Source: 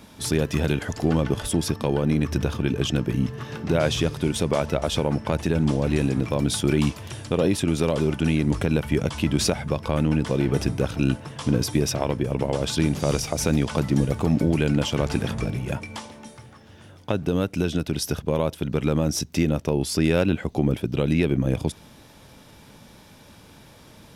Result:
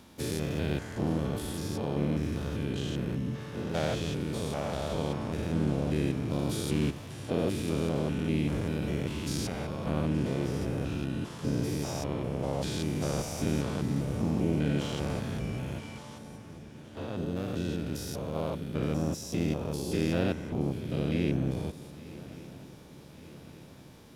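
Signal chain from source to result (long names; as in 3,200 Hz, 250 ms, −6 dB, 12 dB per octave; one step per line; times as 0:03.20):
spectrum averaged block by block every 200 ms
pitch-shifted copies added +4 semitones −7 dB
feedback echo with a long and a short gap by turns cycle 1,163 ms, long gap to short 3 to 1, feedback 57%, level −19 dB
level −6.5 dB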